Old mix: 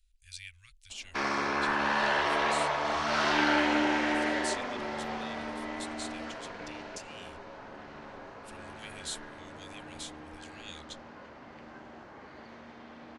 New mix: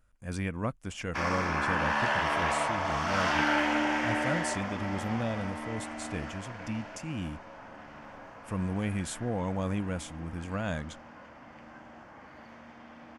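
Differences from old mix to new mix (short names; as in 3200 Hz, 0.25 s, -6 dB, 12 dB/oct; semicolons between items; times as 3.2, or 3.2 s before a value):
speech: remove inverse Chebyshev band-stop 190–750 Hz, stop band 70 dB; master: add thirty-one-band EQ 400 Hz -11 dB, 4000 Hz -10 dB, 12500 Hz +8 dB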